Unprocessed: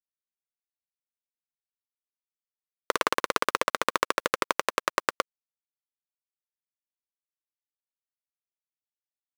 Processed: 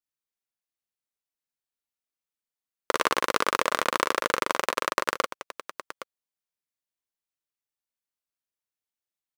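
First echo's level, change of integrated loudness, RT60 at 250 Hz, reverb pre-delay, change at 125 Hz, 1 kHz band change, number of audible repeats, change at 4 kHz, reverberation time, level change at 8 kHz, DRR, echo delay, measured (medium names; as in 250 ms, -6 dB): -4.0 dB, +1.5 dB, no reverb, no reverb, +1.5 dB, +1.5 dB, 2, +1.5 dB, no reverb, +1.5 dB, no reverb, 42 ms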